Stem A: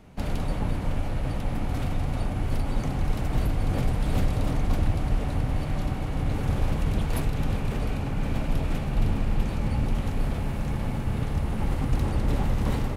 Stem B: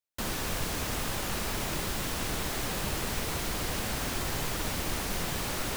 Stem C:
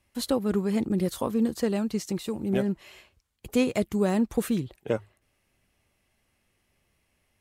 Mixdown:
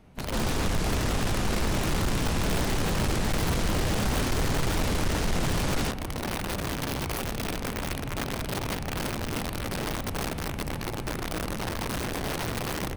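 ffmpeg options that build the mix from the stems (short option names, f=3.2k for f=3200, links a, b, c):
-filter_complex "[0:a]aeval=exprs='(mod(11.9*val(0)+1,2)-1)/11.9':c=same,bandreject=f=7.2k:w=12,volume=-4dB[a];[1:a]lowpass=9.3k,lowshelf=f=420:g=8.5,adelay=150,volume=3dB[b];[2:a]volume=-16.5dB[c];[a][b][c]amix=inputs=3:normalize=0,asoftclip=type=tanh:threshold=-19.5dB"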